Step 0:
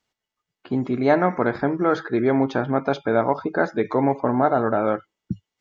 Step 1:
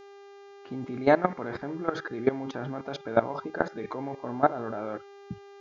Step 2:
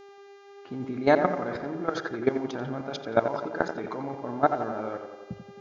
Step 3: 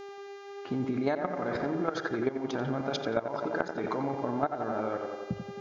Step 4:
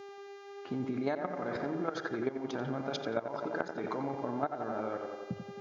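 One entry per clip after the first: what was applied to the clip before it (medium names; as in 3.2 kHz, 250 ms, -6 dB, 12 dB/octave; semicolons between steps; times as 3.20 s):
level held to a coarse grid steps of 17 dB; mains buzz 400 Hz, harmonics 17, -49 dBFS -8 dB/octave
dynamic bell 5.9 kHz, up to +6 dB, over -50 dBFS, Q 0.82; on a send: tape echo 87 ms, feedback 71%, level -7 dB, low-pass 2.1 kHz
compression 8:1, threshold -32 dBFS, peak gain reduction 17 dB; trim +5.5 dB
high-pass 89 Hz; trim -4 dB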